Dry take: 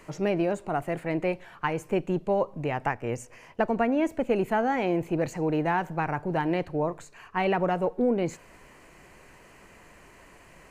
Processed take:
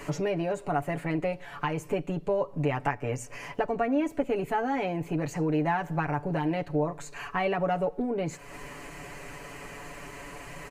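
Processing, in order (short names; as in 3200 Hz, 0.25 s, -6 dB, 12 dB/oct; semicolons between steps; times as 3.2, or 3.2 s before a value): compressor 2.5:1, threshold -41 dBFS, peak gain reduction 14 dB; comb 7 ms, depth 77%; gain +8 dB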